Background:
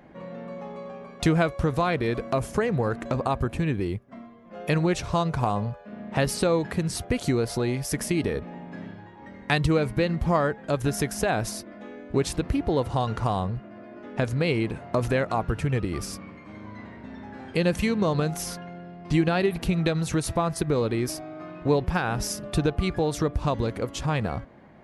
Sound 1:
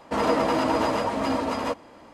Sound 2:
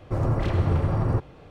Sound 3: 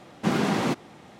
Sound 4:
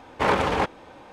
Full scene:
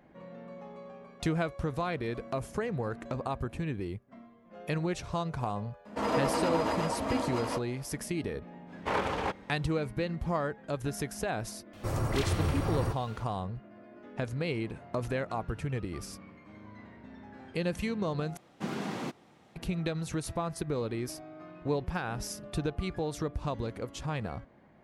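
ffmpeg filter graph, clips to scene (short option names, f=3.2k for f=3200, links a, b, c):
-filter_complex "[0:a]volume=-8.5dB[a];[2:a]crystalizer=i=8.5:c=0[b];[a]asplit=2[c][d];[c]atrim=end=18.374[e];[3:a]atrim=end=1.19,asetpts=PTS-STARTPTS,volume=-11.5dB[f];[d]atrim=start=19.556[g];[1:a]atrim=end=2.13,asetpts=PTS-STARTPTS,volume=-7dB,afade=t=in:d=0.004:c=hsin,afade=t=out:st=2.126:d=0.004:c=hsin,adelay=257985S[h];[4:a]atrim=end=1.12,asetpts=PTS-STARTPTS,volume=-9dB,afade=t=in:d=0.05,afade=t=out:st=1.07:d=0.05,adelay=381906S[i];[b]atrim=end=1.5,asetpts=PTS-STARTPTS,volume=-8dB,afade=t=in:d=0.004:c=hsin,afade=t=out:st=1.496:d=0.004:c=hsin,adelay=11730[j];[e][f]acrossfade=d=0.004:c1=hsin:c2=hsin[k];[k][g]acrossfade=d=0.004:c1=hsin:c2=hsin[l];[l][h][i][j]amix=inputs=4:normalize=0"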